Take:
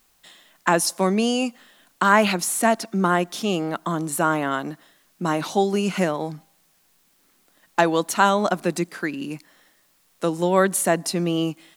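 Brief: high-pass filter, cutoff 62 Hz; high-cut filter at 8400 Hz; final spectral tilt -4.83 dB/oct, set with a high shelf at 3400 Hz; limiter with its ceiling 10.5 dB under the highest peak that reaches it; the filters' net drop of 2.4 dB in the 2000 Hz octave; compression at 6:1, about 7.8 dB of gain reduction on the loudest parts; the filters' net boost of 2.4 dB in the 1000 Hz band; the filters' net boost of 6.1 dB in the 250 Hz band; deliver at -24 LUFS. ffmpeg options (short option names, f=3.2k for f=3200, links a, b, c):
-af "highpass=62,lowpass=8.4k,equalizer=f=250:t=o:g=8.5,equalizer=f=1k:t=o:g=3.5,equalizer=f=2k:t=o:g=-6.5,highshelf=f=3.4k:g=5,acompressor=threshold=-18dB:ratio=6,volume=1dB,alimiter=limit=-14.5dB:level=0:latency=1"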